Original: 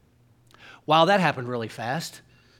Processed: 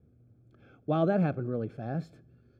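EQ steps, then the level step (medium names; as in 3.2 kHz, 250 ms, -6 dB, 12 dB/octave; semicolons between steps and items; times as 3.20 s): boxcar filter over 46 samples; high-pass 48 Hz; 0.0 dB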